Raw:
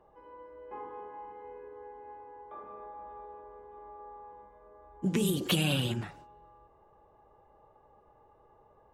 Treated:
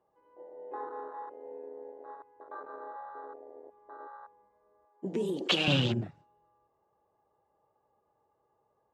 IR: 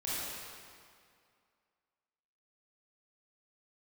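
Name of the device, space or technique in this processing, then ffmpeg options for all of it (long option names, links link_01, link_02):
over-cleaned archive recording: -filter_complex "[0:a]highpass=100,lowpass=7200,afwtdn=0.0112,asettb=1/sr,asplit=3[link_01][link_02][link_03];[link_01]atrim=end=4.854[link_04];[link_02]atrim=start=4.85:end=5.68,asetpts=PTS-STARTPTS,afade=type=in:duration=0.004:curve=qsin,afade=type=out:start_time=0.826:duration=0.004:curve=qsin,highpass=390[link_05];[link_03]atrim=start=5.676[link_06];[link_04][link_05]acrossfade=duration=0.004:curve1=hsin:curve2=qsin[link_07];[link_07][link_06]acrossfade=duration=0.004:curve1=qsin:curve2=hsin,volume=4dB"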